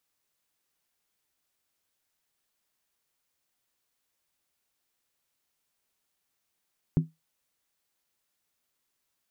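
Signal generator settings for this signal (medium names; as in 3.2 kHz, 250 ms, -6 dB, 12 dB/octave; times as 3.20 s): skin hit, lowest mode 160 Hz, decay 0.19 s, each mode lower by 8.5 dB, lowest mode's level -15.5 dB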